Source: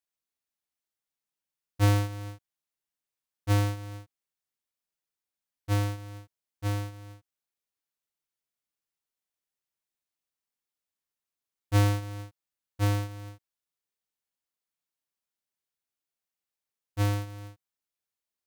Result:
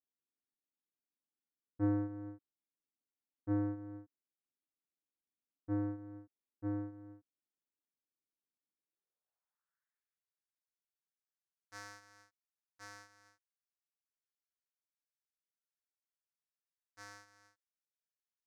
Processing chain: band-pass sweep 280 Hz -> 5400 Hz, 8.83–10.44; in parallel at -2.5 dB: limiter -33.5 dBFS, peak gain reduction 11.5 dB; on the sum: resonant high shelf 2200 Hz -10.5 dB, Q 3; gain -2.5 dB

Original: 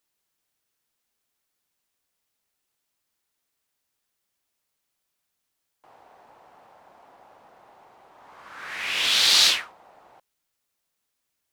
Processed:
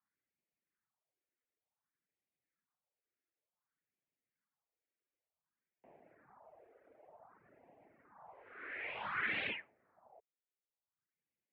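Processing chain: reverb removal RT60 1.4 s; mistuned SSB -97 Hz 210–2300 Hz; phaser stages 4, 0.55 Hz, lowest notch 150–1300 Hz; gain -3 dB

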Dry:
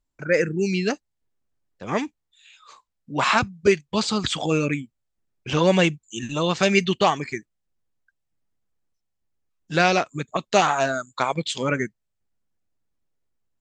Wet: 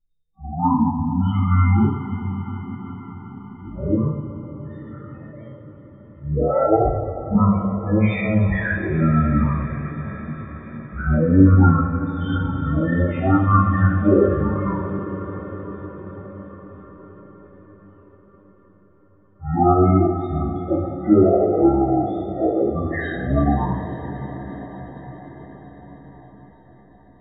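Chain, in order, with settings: loudest bins only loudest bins 16; two-slope reverb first 0.3 s, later 4.3 s, from -18 dB, DRR -7.5 dB; speed mistake 15 ips tape played at 7.5 ips; gain -2.5 dB

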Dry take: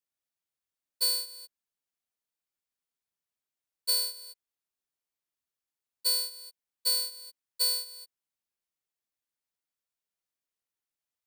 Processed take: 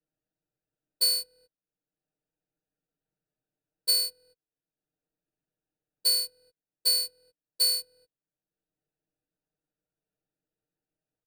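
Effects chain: Wiener smoothing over 41 samples; comb 6.5 ms, depth 94%; three-band squash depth 40%

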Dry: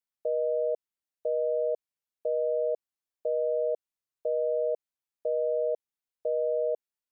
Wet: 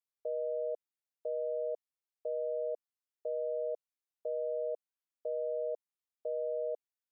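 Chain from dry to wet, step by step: HPF 290 Hz; gain -7 dB

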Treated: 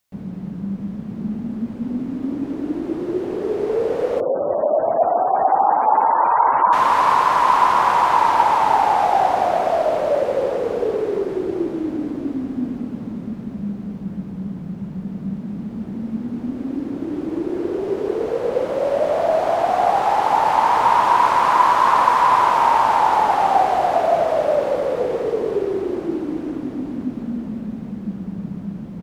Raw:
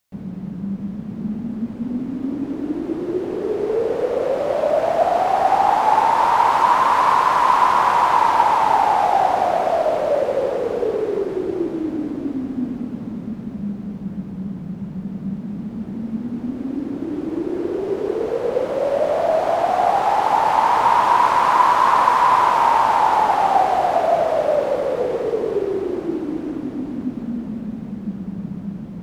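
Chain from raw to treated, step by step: speakerphone echo 90 ms, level -23 dB; 4.2–6.73 spectral gate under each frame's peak -25 dB strong

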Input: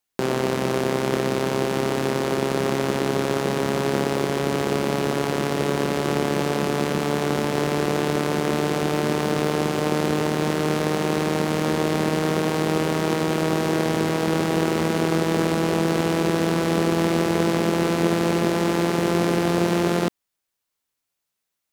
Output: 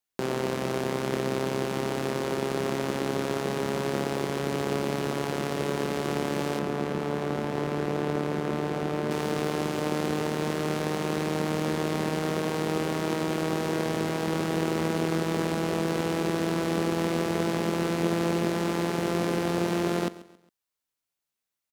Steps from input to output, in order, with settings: 6.59–9.11 high shelf 3100 Hz -10 dB; feedback echo 0.136 s, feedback 37%, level -18 dB; gain -6 dB

